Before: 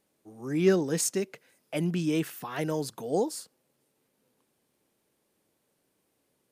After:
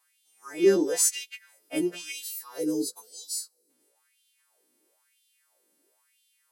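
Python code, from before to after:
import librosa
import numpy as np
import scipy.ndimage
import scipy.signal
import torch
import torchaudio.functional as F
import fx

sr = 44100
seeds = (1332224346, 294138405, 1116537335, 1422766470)

y = fx.freq_snap(x, sr, grid_st=2)
y = fx.spec_box(y, sr, start_s=2.12, length_s=1.58, low_hz=550.0, high_hz=3900.0, gain_db=-14)
y = fx.filter_lfo_highpass(y, sr, shape='sine', hz=1.0, low_hz=270.0, high_hz=3300.0, q=5.2)
y = F.gain(torch.from_numpy(y), -4.0).numpy()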